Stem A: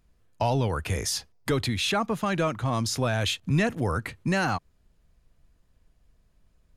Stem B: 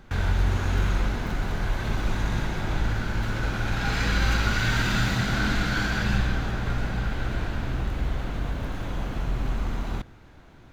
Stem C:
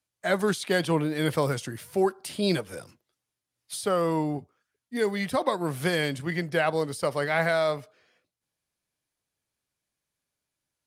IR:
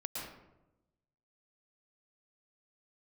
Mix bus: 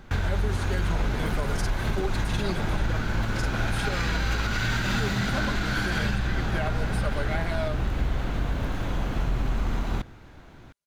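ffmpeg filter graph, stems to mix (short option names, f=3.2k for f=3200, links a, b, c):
-filter_complex "[0:a]tremolo=f=20:d=0.919,adelay=500,volume=-6dB[a];[1:a]volume=2.5dB[b];[2:a]aecho=1:1:5:0.77,volume=-8dB[c];[a][b][c]amix=inputs=3:normalize=0,alimiter=limit=-16.5dB:level=0:latency=1:release=170"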